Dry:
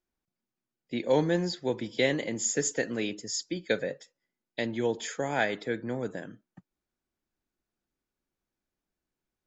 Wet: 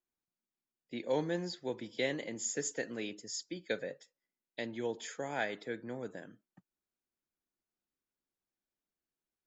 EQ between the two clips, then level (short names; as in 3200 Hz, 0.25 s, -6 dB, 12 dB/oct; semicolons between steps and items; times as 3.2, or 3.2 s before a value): low shelf 120 Hz -7.5 dB; -7.5 dB